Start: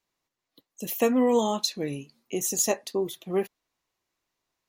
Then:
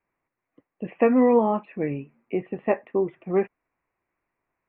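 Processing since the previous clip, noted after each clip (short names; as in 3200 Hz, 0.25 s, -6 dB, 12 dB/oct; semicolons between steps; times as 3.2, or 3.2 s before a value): steep low-pass 2500 Hz 72 dB/oct; gain +4 dB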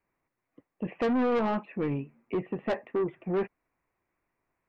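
low shelf 340 Hz +3.5 dB; soft clip -22.5 dBFS, distortion -7 dB; gain -1 dB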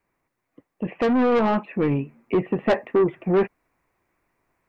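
vocal rider 2 s; gain +8 dB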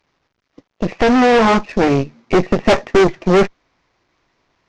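CVSD 32 kbps; added harmonics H 4 -8 dB, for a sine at -13 dBFS; gain +7 dB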